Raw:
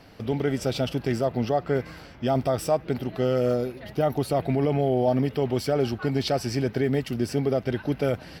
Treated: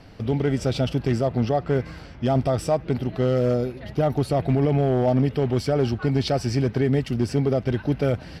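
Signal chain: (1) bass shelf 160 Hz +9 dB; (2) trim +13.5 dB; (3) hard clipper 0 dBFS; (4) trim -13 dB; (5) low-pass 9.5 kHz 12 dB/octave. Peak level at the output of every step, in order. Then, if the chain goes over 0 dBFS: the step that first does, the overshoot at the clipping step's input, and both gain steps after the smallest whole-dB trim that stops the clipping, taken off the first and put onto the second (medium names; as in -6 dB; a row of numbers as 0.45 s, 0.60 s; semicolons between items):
-10.5 dBFS, +3.0 dBFS, 0.0 dBFS, -13.0 dBFS, -13.0 dBFS; step 2, 3.0 dB; step 2 +10.5 dB, step 4 -10 dB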